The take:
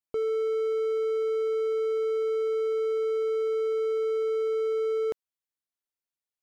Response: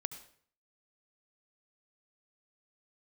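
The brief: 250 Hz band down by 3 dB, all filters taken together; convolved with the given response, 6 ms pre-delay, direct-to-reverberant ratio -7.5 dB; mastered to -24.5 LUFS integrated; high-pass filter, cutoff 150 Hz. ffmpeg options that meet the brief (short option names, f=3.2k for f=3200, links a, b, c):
-filter_complex "[0:a]highpass=150,equalizer=f=250:t=o:g=-8.5,asplit=2[a][b];[1:a]atrim=start_sample=2205,adelay=6[c];[b][c]afir=irnorm=-1:irlink=0,volume=8.5dB[d];[a][d]amix=inputs=2:normalize=0,volume=2.5dB"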